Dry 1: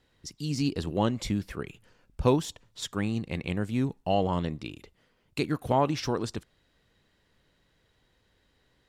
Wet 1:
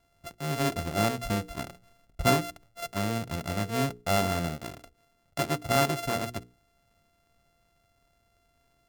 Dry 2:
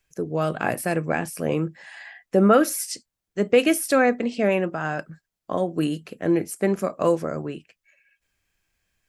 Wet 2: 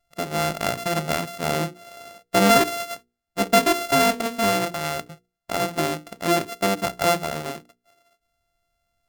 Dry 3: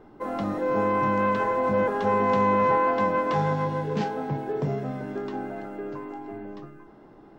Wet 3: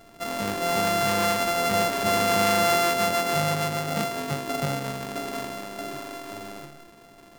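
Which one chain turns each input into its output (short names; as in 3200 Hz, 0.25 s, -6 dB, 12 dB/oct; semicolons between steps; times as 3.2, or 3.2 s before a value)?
sample sorter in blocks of 64 samples; notches 60/120/180/240/300/360/420/480 Hz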